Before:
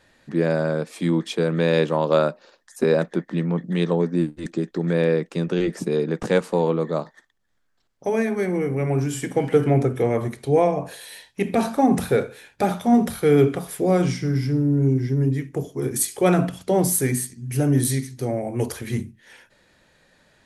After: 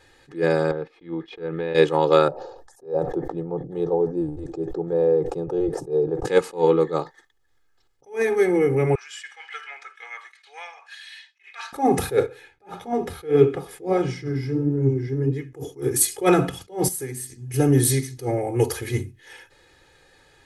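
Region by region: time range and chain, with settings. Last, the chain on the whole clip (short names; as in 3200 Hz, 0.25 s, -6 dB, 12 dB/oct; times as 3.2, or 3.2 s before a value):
0.71–1.75 gate -37 dBFS, range -12 dB + air absorption 320 m + compressor 4:1, threshold -27 dBFS
2.28–6.25 EQ curve 130 Hz 0 dB, 190 Hz -11 dB, 720 Hz 0 dB, 2100 Hz -27 dB, 5100 Hz -20 dB + sustainer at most 65 dB/s
8.95–11.73 HPF 1400 Hz 24 dB/oct + air absorption 140 m
12.26–15.53 high shelf 5500 Hz -11.5 dB + flange 1.6 Hz, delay 4.3 ms, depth 9.1 ms, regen +64%
16.88–17.54 notches 50/100/150 Hz + compressor 3:1, threshold -35 dBFS
whole clip: comb 2.4 ms, depth 80%; attack slew limiter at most 220 dB/s; gain +1.5 dB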